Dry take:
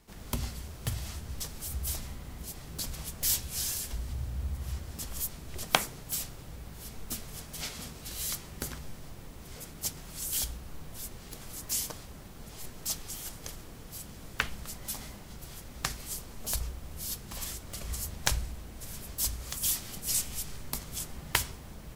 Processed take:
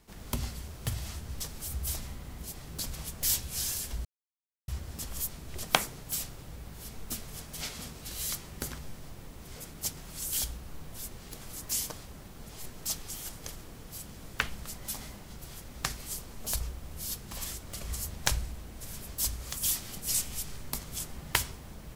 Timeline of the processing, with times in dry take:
0:04.05–0:04.68: silence

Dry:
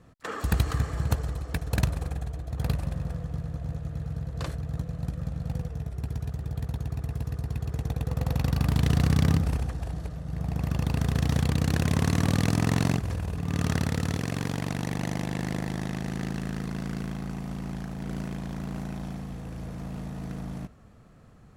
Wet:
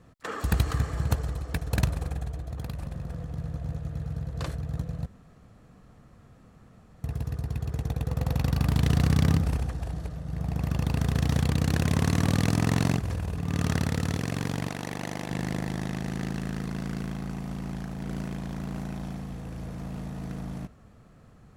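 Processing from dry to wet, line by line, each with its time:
0:02.46–0:03.37: downward compressor, threshold −30 dBFS
0:05.06–0:07.04: fill with room tone
0:14.68–0:15.30: bass and treble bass −8 dB, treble −1 dB

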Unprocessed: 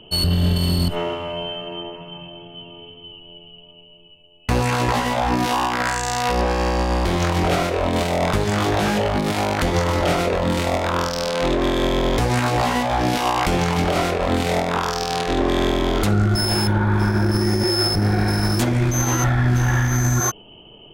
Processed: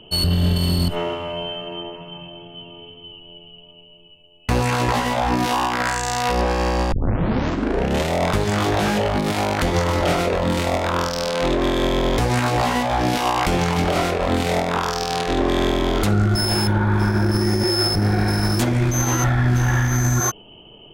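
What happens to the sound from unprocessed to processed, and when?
0:06.92: tape start 1.23 s

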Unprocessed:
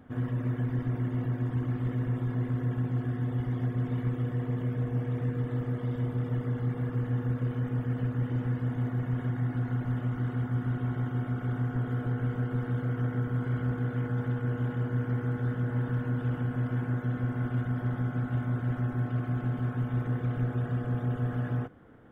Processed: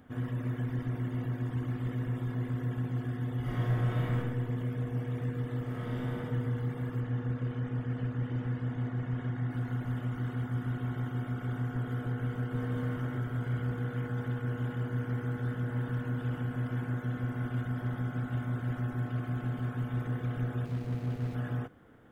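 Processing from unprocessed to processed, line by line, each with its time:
0:03.40–0:04.16: thrown reverb, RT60 1.1 s, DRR −6.5 dB
0:05.62–0:06.14: thrown reverb, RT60 2.5 s, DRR −3.5 dB
0:07.00–0:09.51: high-frequency loss of the air 72 metres
0:12.33–0:12.75: delay throw 210 ms, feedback 70%, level −3 dB
0:20.65–0:21.35: running median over 41 samples
whole clip: high-shelf EQ 2,700 Hz +9 dB; level −3.5 dB

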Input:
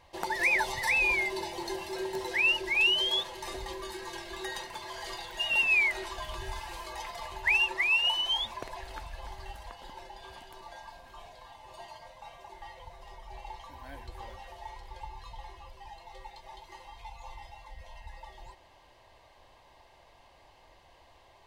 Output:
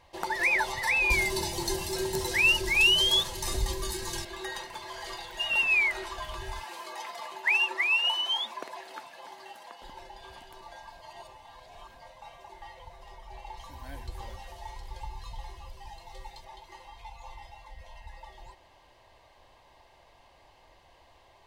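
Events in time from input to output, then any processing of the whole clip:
0:01.10–0:04.25: bass and treble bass +15 dB, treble +14 dB
0:06.63–0:09.82: high-pass filter 210 Hz 24 dB per octave
0:11.01–0:12.00: reverse
0:13.57–0:16.45: bass and treble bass +6 dB, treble +7 dB
whole clip: dynamic equaliser 1,300 Hz, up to +5 dB, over −46 dBFS, Q 2.4

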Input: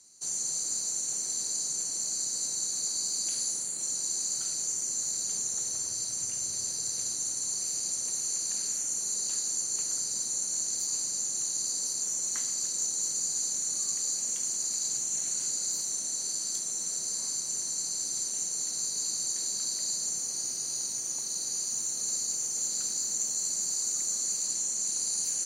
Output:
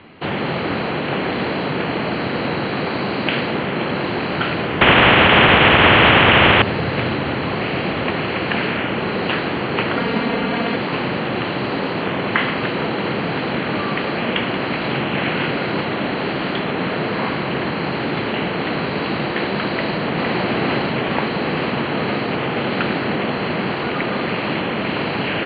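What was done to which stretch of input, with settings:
0:04.81–0:06.62: every bin compressed towards the loudest bin 4 to 1
0:09.96–0:10.76: comb filter 4.3 ms, depth 66%
0:19.71–0:20.33: delay throw 460 ms, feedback 75%, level −2.5 dB
whole clip: Butterworth low-pass 3,200 Hz 72 dB per octave; boost into a limiter +34 dB; level −1 dB

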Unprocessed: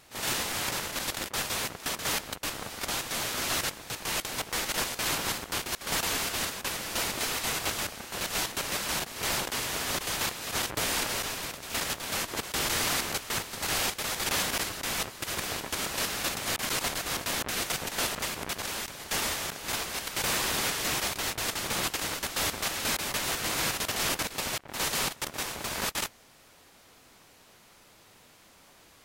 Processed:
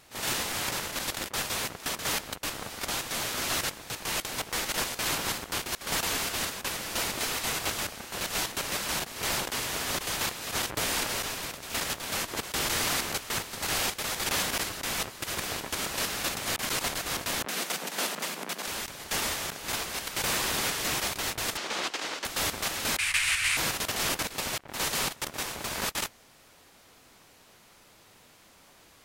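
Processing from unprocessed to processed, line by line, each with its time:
0:17.46–0:18.66: Chebyshev high-pass filter 160 Hz, order 6
0:21.57–0:22.25: three-way crossover with the lows and the highs turned down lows −23 dB, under 230 Hz, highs −20 dB, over 7,100 Hz
0:22.98–0:23.57: drawn EQ curve 100 Hz 0 dB, 190 Hz −21 dB, 280 Hz −18 dB, 450 Hz −23 dB, 2,400 Hz +13 dB, 3,400 Hz +3 dB, 6,300 Hz 0 dB, 9,100 Hz +7 dB, 15,000 Hz −13 dB

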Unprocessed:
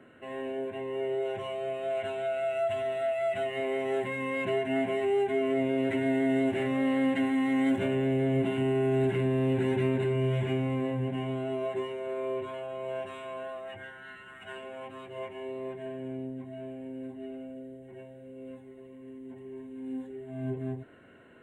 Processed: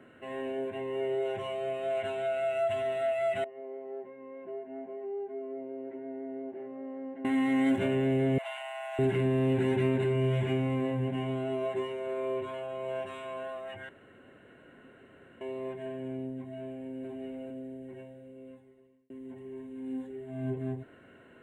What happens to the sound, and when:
0:03.44–0:07.25: four-pole ladder band-pass 490 Hz, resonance 20%
0:08.38–0:08.99: Chebyshev high-pass filter 590 Hz, order 8
0:13.89–0:15.41: fill with room tone
0:16.61–0:17.07: delay throw 430 ms, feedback 40%, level −3 dB
0:17.95–0:19.10: fade out

